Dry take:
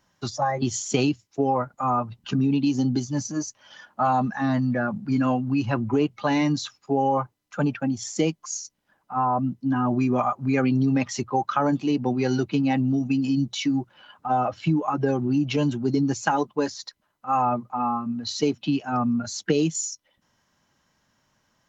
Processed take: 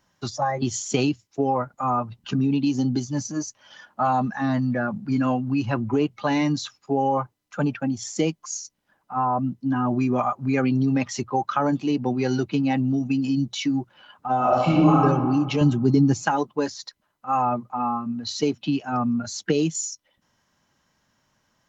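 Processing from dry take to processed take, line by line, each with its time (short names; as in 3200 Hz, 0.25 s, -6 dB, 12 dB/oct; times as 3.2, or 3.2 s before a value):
14.36–15.03 reverb throw, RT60 1.6 s, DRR -6 dB
15.61–16.25 low shelf 240 Hz +10 dB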